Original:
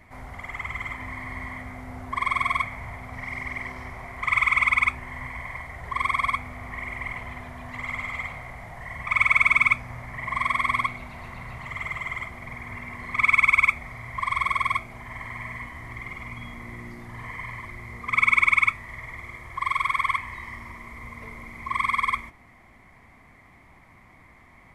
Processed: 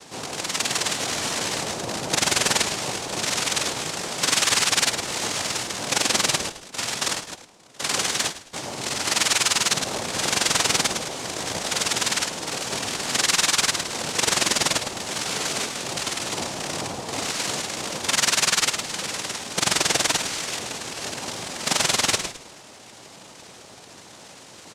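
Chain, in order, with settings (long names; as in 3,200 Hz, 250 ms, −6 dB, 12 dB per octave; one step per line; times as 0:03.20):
loose part that buzzes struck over −37 dBFS, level −21 dBFS
0:06.49–0:08.53: noise gate −32 dBFS, range −23 dB
dynamic equaliser 3,700 Hz, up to −7 dB, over −35 dBFS, Q 0.84
cochlear-implant simulation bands 2
echo with shifted repeats 106 ms, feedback 31%, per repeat −54 Hz, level −14 dB
boost into a limiter +16.5 dB
level −7.5 dB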